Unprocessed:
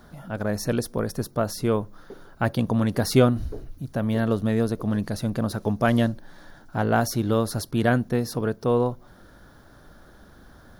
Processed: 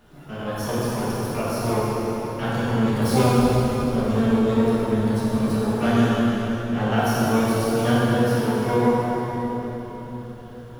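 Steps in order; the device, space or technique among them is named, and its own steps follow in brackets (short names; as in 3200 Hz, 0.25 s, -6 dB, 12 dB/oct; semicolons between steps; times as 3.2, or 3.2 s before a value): shimmer-style reverb (harmoniser +12 st -6 dB; reverb RT60 4.4 s, pre-delay 10 ms, DRR -8.5 dB); gain -8 dB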